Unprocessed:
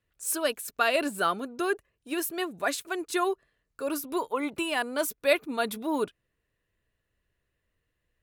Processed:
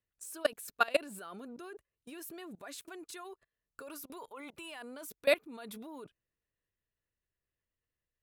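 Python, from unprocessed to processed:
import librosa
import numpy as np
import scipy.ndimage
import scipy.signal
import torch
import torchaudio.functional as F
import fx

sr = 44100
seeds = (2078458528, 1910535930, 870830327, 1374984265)

y = fx.dynamic_eq(x, sr, hz=270.0, q=0.81, threshold_db=-42.0, ratio=4.0, max_db=-6, at=(3.03, 4.8), fade=0.02)
y = fx.level_steps(y, sr, step_db=23)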